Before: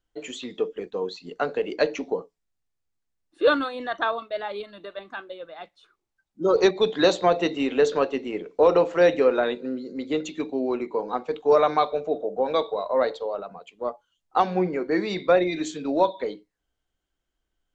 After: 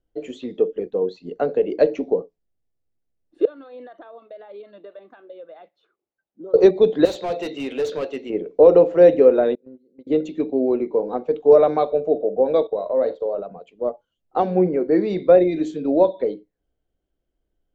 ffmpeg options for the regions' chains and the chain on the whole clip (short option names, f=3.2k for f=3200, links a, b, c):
-filter_complex "[0:a]asettb=1/sr,asplit=3[a][b][c];[a]atrim=end=3.454[d];[b]atrim=start=3.45:end=6.54,asetpts=PTS-STARTPTS,afade=t=in:d=0.004:c=qsin,afade=t=out:st=3.086:d=0.004:c=qsin,highpass=f=630:p=1,aemphasis=mode=reproduction:type=50fm,acompressor=threshold=-41dB:ratio=5:attack=3.2:release=140:knee=1:detection=peak[e];[c]atrim=start=6.536[f];[d][e]acrossfade=d=0.004:c1=hsin:c2=qsin[g];[g][f]acrossfade=d=0.004:c1=qsin:c2=hsin,asettb=1/sr,asplit=3[h][i][j];[h]atrim=end=7.054[k];[i]atrim=start=7.05:end=8.3,asetpts=PTS-STARTPTS,afade=t=in:d=0.004:c=qsin,afade=t=out:st=1.246:d=0.004:c=qsin,tiltshelf=f=1.1k:g=-9.5,asoftclip=type=hard:threshold=-24.5dB[l];[j]atrim=start=8.296[m];[k][l]acrossfade=d=0.004:c1=hsin:c2=qsin[n];[n][m]acrossfade=d=0.004:c1=qsin:c2=hsin,asettb=1/sr,asplit=3[o][p][q];[o]atrim=end=9.554[r];[p]atrim=start=9.55:end=10.07,asetpts=PTS-STARTPTS,afade=t=in:d=0.004:c=qsin,afade=t=out:st=0.516:d=0.004:c=qsin,agate=range=-29dB:threshold=-28dB:ratio=16:release=100:detection=peak,acompressor=threshold=-44dB:ratio=8:attack=3.2:release=140:knee=1:detection=peak[s];[q]atrim=start=10.066[t];[r][s]acrossfade=d=0.004:c1=hsin:c2=qsin[u];[u][t]acrossfade=d=0.004:c1=qsin:c2=hsin,asettb=1/sr,asplit=3[v][w][x];[v]atrim=end=12.674[y];[w]atrim=start=12.67:end=13.39,asetpts=PTS-STARTPTS,afade=t=in:d=0.004:c=qsin,afade=t=out:st=0.716:d=0.004:c=qsin,agate=range=-11dB:threshold=-36dB:ratio=16:release=100:detection=peak,acompressor=threshold=-25dB:ratio=2:attack=3.2:release=140:knee=1:detection=peak,asplit=2[z][aa];[aa]adelay=42,volume=-13dB[ab];[z][ab]amix=inputs=2:normalize=0,atrim=end_sample=31752[ac];[x]atrim=start=13.386[ad];[y][ac]acrossfade=d=0.004:c1=hsin:c2=qsin[ae];[ae][ad]acrossfade=d=0.004:c1=qsin:c2=hsin,lowpass=f=2.8k:p=1,lowshelf=f=760:t=q:w=1.5:g=8.5,volume=-3.5dB"